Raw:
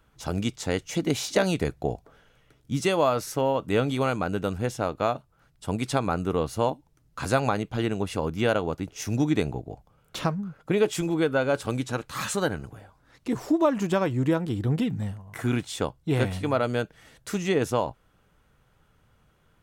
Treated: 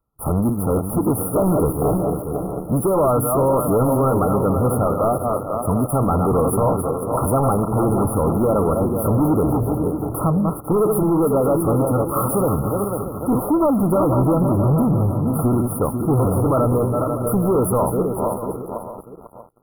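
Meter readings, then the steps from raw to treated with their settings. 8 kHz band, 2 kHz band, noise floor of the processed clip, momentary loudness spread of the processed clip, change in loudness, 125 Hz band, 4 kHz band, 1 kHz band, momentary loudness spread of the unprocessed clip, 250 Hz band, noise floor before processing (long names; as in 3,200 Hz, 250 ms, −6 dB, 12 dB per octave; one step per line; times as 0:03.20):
+6.5 dB, below −15 dB, −34 dBFS, 6 LU, +8.0 dB, +10.0 dB, below −40 dB, +8.5 dB, 10 LU, +9.0 dB, −64 dBFS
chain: feedback delay that plays each chunk backwards 247 ms, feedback 57%, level −8.5 dB
high-shelf EQ 5,600 Hz +6.5 dB
leveller curve on the samples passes 5
linear-phase brick-wall band-stop 1,400–9,500 Hz
single-tap delay 637 ms −12 dB
level −3.5 dB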